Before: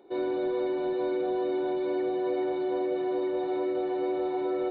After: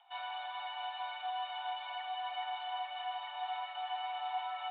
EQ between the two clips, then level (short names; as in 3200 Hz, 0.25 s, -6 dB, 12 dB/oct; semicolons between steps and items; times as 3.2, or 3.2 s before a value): steep high-pass 720 Hz 96 dB/oct; synth low-pass 3100 Hz, resonance Q 14; tilt -4 dB/oct; 0.0 dB